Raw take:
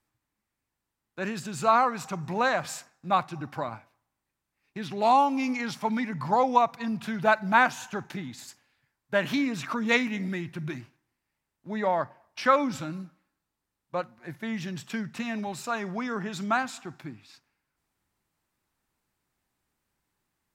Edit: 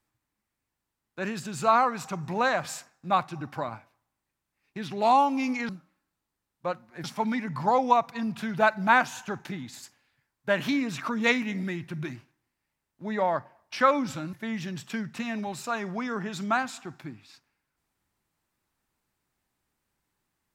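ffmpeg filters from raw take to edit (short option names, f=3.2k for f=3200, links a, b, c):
-filter_complex "[0:a]asplit=4[a][b][c][d];[a]atrim=end=5.692[e];[b]atrim=start=12.978:end=14.332[f];[c]atrim=start=5.688:end=12.982[g];[d]atrim=start=14.328[h];[e][f]acrossfade=d=0.004:c1=hsin:c2=hsin[i];[i][g]acrossfade=d=0.004:c1=hsin:c2=hsin[j];[j][h]acrossfade=d=0.004:c1=hsin:c2=hsin"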